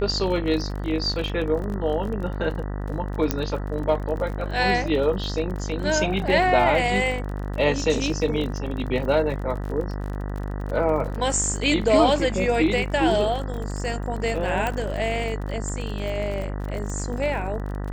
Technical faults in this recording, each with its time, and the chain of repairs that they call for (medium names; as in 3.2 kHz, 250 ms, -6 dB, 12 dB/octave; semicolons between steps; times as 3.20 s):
buzz 50 Hz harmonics 39 -29 dBFS
crackle 39 per s -31 dBFS
3.31 s: pop -6 dBFS
14.67 s: pop -12 dBFS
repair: de-click; de-hum 50 Hz, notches 39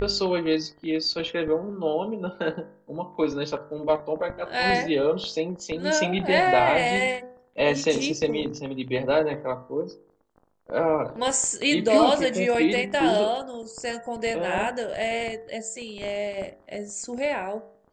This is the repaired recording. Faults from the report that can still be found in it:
14.67 s: pop